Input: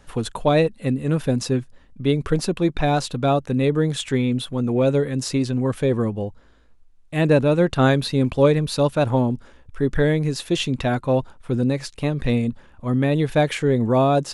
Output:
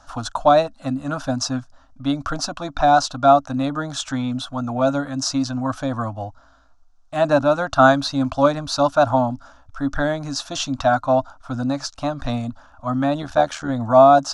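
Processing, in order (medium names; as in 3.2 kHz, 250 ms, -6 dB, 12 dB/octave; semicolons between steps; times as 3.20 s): FFT filter 110 Hz 0 dB, 190 Hz -12 dB, 280 Hz +5 dB, 400 Hz -25 dB, 650 Hz +13 dB, 930 Hz +8 dB, 1.4 kHz +13 dB, 2 kHz -8 dB, 5.9 kHz +11 dB, 10 kHz -7 dB; 13.22–13.69 s: AM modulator 80 Hz, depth 50%; trim -2 dB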